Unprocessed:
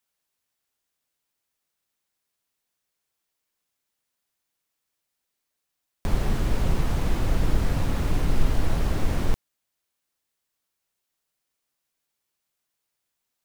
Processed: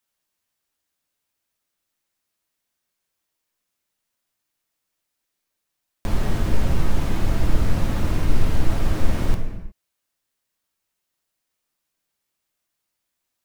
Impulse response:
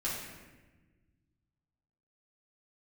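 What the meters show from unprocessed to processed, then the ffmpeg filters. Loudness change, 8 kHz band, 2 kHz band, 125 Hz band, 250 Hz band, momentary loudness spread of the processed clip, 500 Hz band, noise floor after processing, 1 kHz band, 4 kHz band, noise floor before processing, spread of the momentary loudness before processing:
+2.5 dB, +1.5 dB, +2.0 dB, +2.5 dB, +3.0 dB, 6 LU, +1.5 dB, -80 dBFS, +1.5 dB, +1.5 dB, -81 dBFS, 4 LU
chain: -filter_complex "[0:a]asplit=2[a][b];[1:a]atrim=start_sample=2205,afade=t=out:st=0.42:d=0.01,atrim=end_sample=18963[c];[b][c]afir=irnorm=-1:irlink=0,volume=-5.5dB[d];[a][d]amix=inputs=2:normalize=0,volume=-2dB"

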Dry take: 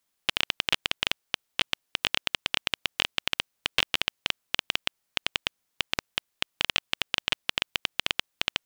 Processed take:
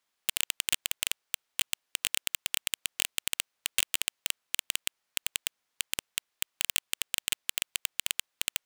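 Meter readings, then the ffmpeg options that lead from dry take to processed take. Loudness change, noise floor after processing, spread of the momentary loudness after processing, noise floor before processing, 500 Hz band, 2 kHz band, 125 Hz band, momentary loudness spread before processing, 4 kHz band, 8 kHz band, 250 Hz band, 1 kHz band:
-2.5 dB, -82 dBFS, 5 LU, -78 dBFS, -12.0 dB, -6.5 dB, -9.5 dB, 5 LU, -5.5 dB, +10.0 dB, -10.0 dB, -12.0 dB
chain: -filter_complex "[0:a]asplit=2[a][b];[b]highpass=f=720:p=1,volume=9dB,asoftclip=type=tanh:threshold=-4dB[c];[a][c]amix=inputs=2:normalize=0,lowpass=f=3.8k:p=1,volume=-6dB,aeval=exprs='(mod(2.37*val(0)+1,2)-1)/2.37':c=same,volume=-2.5dB"

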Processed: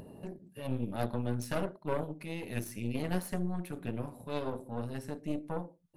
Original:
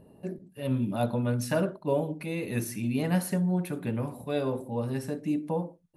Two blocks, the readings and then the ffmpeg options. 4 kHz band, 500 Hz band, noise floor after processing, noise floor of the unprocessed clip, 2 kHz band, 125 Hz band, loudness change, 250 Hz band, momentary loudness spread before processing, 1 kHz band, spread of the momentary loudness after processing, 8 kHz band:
-4.5 dB, -7.0 dB, -61 dBFS, -58 dBFS, -5.5 dB, -7.0 dB, -7.0 dB, -7.5 dB, 6 LU, -4.5 dB, 6 LU, -7.5 dB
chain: -af "aeval=exprs='0.178*(cos(1*acos(clip(val(0)/0.178,-1,1)))-cos(1*PI/2))+0.0501*(cos(4*acos(clip(val(0)/0.178,-1,1)))-cos(4*PI/2))':c=same,acompressor=mode=upward:threshold=-30dB:ratio=2.5,volume=-8dB"

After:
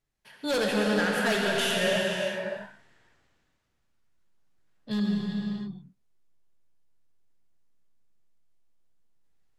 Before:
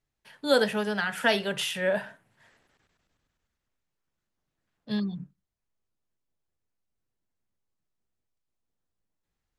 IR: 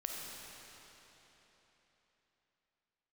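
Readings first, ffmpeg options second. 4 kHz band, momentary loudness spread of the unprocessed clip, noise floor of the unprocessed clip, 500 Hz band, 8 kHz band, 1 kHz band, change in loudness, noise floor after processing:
+1.5 dB, 12 LU, -84 dBFS, 0.0 dB, +3.5 dB, +0.5 dB, 0.0 dB, -74 dBFS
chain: -filter_complex "[0:a]asoftclip=type=hard:threshold=-24dB[a];[1:a]atrim=start_sample=2205,afade=t=out:st=0.44:d=0.01,atrim=end_sample=19845,asetrate=25578,aresample=44100[b];[a][b]afir=irnorm=-1:irlink=0"

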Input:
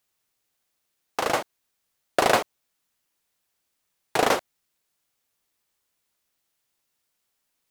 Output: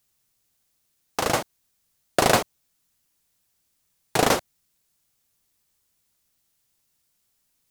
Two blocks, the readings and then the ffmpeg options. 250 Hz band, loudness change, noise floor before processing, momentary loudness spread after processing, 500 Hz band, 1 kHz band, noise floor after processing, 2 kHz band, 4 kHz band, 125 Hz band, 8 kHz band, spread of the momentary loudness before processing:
+4.0 dB, +1.0 dB, -77 dBFS, 14 LU, +0.5 dB, 0.0 dB, -72 dBFS, +0.5 dB, +2.5 dB, +9.0 dB, +5.5 dB, 14 LU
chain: -af "bass=f=250:g=10,treble=f=4k:g=6"

